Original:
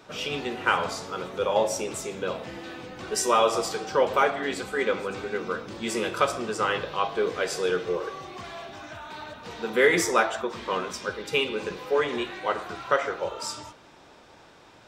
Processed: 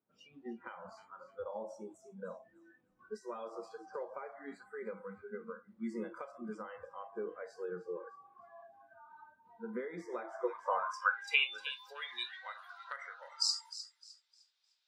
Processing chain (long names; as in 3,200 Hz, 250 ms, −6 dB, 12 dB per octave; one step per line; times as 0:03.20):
noise reduction from a noise print of the clip's start 27 dB
parametric band 240 Hz −13.5 dB 2.7 octaves
delay with a high-pass on its return 305 ms, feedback 30%, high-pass 2,400 Hz, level −16 dB
downward compressor 6 to 1, threshold −33 dBFS, peak gain reduction 13 dB
band-pass filter sweep 220 Hz → 4,300 Hz, 0:10.04–0:11.77
level +10 dB